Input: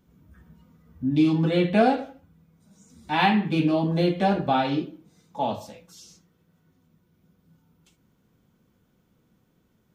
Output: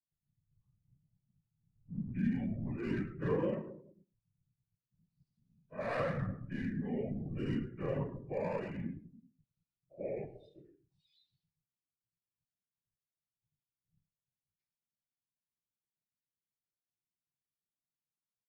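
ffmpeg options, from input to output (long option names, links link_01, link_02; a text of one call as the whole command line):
ffmpeg -i in.wav -filter_complex "[0:a]afftdn=noise_reduction=26:noise_floor=-40,equalizer=frequency=63:width_type=o:width=0.22:gain=-9,asetrate=55563,aresample=44100,atempo=0.793701,afftfilt=real='hypot(re,im)*cos(2*PI*random(0))':imag='hypot(re,im)*sin(2*PI*random(1))':win_size=512:overlap=0.75,acrossover=split=170|3300[link_01][link_02][link_03];[link_01]aeval=exprs='val(0)*sin(2*PI*120*n/s)':channel_layout=same[link_04];[link_03]aeval=exprs='clip(val(0),-1,0.00398)':channel_layout=same[link_05];[link_04][link_02][link_05]amix=inputs=3:normalize=0,asetrate=23726,aresample=44100,asplit=2[link_06][link_07];[link_07]aecho=0:1:106:0.1[link_08];[link_06][link_08]amix=inputs=2:normalize=0,volume=-8dB" out.wav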